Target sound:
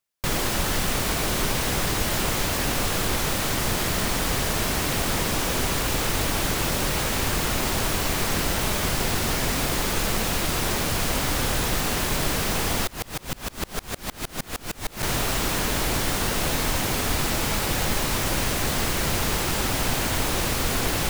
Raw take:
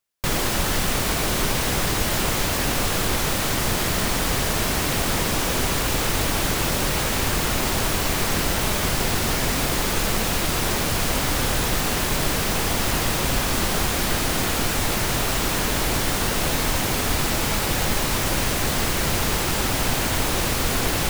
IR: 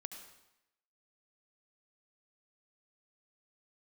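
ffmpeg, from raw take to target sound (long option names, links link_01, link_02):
-filter_complex "[0:a]asettb=1/sr,asplit=3[link_01][link_02][link_03];[link_01]atrim=end=12.874[link_04];[link_02]atrim=start=12.87:end=15.03,asetpts=PTS-STARTPTS,afade=type=in:duration=0.004:curve=qsin,afade=type=out:start_time=2.156:duration=0.004:curve=qsin,aeval=exprs='val(0)*pow(10,-30*if(lt(mod(-6.5*n/s,1),2*abs(-6.5)/1000),1-mod(-6.5*n/s,1)/(2*abs(-6.5)/1000),(mod(-6.5*n/s,1)-2*abs(-6.5)/1000)/(1-2*abs(-6.5)/1000))/20)':channel_layout=same[link_05];[link_03]atrim=start=15.026[link_06];[link_04][link_05]acrossfade=duration=0.004:curve1=hsin:curve2=qsin[link_07];[link_07][link_06]acrossfade=duration=0.004:curve1=qsin:curve2=hsin,volume=-2dB"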